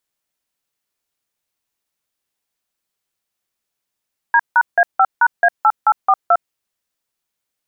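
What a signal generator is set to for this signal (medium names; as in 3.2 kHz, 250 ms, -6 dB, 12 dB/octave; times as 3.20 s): DTMF "D#A5#A8842", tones 55 ms, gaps 163 ms, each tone -11 dBFS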